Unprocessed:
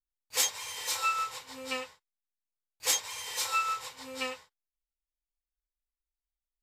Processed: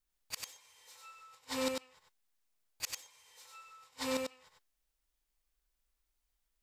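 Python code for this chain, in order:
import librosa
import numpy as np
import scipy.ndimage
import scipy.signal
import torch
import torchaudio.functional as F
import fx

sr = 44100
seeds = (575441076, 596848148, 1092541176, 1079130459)

p1 = 10.0 ** (-29.5 / 20.0) * np.tanh(x / 10.0 ** (-29.5 / 20.0))
p2 = x + (p1 * librosa.db_to_amplitude(-6.5))
p3 = fx.gate_flip(p2, sr, shuts_db=-29.0, range_db=-33)
p4 = p3 + 10.0 ** (-3.5 / 20.0) * np.pad(p3, (int(96 * sr / 1000.0), 0))[:len(p3)]
y = p4 * librosa.db_to_amplitude(5.0)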